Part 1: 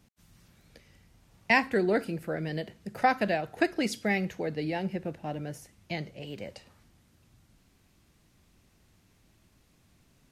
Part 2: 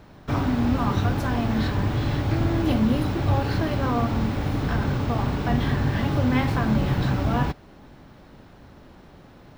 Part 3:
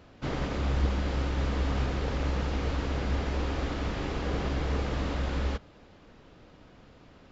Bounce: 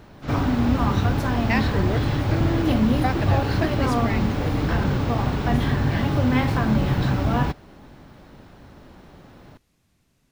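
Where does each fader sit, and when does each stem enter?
-2.5, +1.5, -3.5 dB; 0.00, 0.00, 0.00 s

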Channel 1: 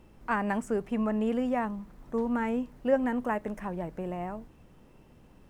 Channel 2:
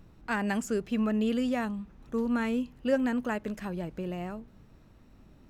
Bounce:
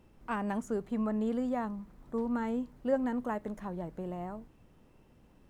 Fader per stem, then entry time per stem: -5.5, -15.0 dB; 0.00, 0.00 s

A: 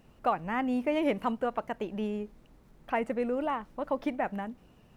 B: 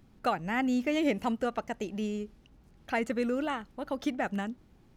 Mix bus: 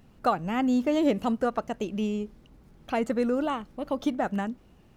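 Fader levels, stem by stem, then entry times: -2.0, +0.5 dB; 0.00, 0.00 s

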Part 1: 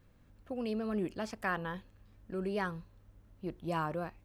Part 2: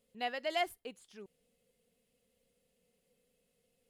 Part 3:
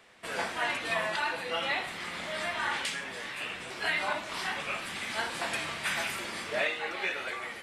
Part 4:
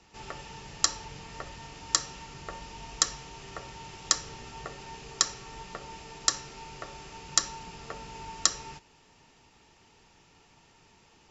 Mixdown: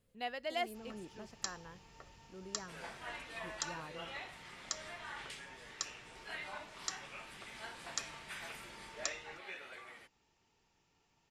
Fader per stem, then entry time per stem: -14.5, -3.5, -15.0, -15.5 dB; 0.00, 0.00, 2.45, 0.60 s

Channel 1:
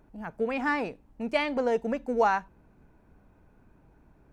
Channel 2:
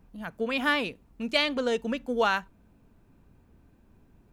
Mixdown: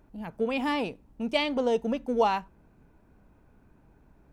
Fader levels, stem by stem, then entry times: -1.0, -7.5 dB; 0.00, 0.00 s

